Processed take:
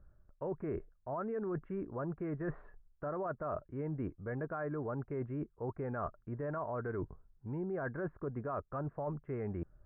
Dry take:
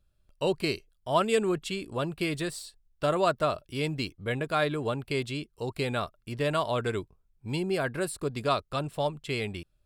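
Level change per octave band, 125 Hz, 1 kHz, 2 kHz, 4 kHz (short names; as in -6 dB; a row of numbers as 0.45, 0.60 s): -6.5 dB, -11.5 dB, -14.0 dB, under -40 dB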